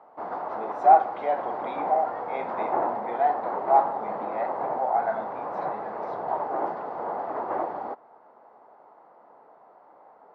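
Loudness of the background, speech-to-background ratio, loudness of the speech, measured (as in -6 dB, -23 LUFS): -31.5 LUFS, 5.5 dB, -26.0 LUFS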